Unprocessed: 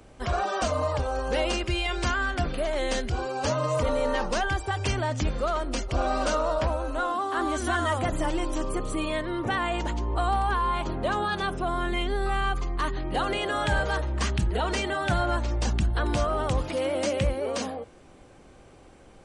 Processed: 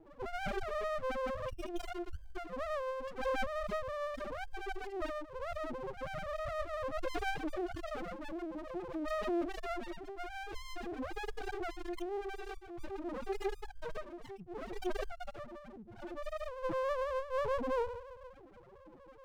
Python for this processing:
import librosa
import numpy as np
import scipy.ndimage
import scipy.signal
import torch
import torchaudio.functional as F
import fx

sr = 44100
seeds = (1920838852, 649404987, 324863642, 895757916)

y = fx.echo_tape(x, sr, ms=67, feedback_pct=76, wet_db=-8, lp_hz=1100.0, drive_db=10.0, wow_cents=22)
y = fx.rotary(y, sr, hz=7.0)
y = fx.over_compress(y, sr, threshold_db=-34.0, ratio=-1.0)
y = fx.weighting(y, sr, curve='A')
y = fx.spec_topn(y, sr, count=1)
y = fx.high_shelf(y, sr, hz=5100.0, db=9.0)
y = fx.running_max(y, sr, window=33)
y = F.gain(torch.from_numpy(y), 14.0).numpy()